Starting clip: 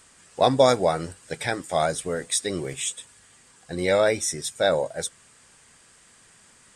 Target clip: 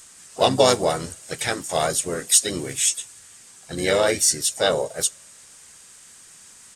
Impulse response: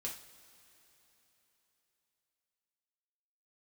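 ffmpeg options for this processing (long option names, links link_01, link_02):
-filter_complex "[0:a]asplit=3[link_01][link_02][link_03];[link_02]asetrate=35002,aresample=44100,atempo=1.25992,volume=-6dB[link_04];[link_03]asetrate=58866,aresample=44100,atempo=0.749154,volume=-16dB[link_05];[link_01][link_04][link_05]amix=inputs=3:normalize=0,highshelf=frequency=3800:gain=11.5,asplit=2[link_06][link_07];[1:a]atrim=start_sample=2205,asetrate=74970,aresample=44100,adelay=31[link_08];[link_07][link_08]afir=irnorm=-1:irlink=0,volume=-19dB[link_09];[link_06][link_09]amix=inputs=2:normalize=0,volume=-1dB"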